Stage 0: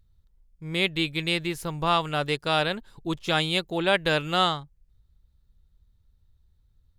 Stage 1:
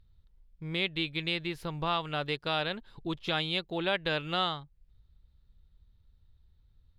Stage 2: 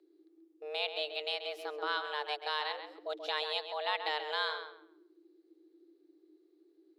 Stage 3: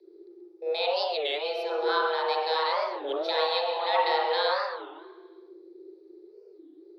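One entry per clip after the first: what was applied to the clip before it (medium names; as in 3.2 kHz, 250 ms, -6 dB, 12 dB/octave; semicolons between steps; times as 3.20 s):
resonant high shelf 5.3 kHz -9.5 dB, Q 1.5; compression 1.5:1, threshold -40 dBFS, peak gain reduction 9 dB
frequency shift +300 Hz; filtered feedback delay 133 ms, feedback 26%, low-pass 3.1 kHz, level -7.5 dB; trim -4.5 dB
frequency shift +26 Hz; reverberation RT60 1.0 s, pre-delay 36 ms, DRR -5 dB; warped record 33 1/3 rpm, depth 250 cents; trim -3 dB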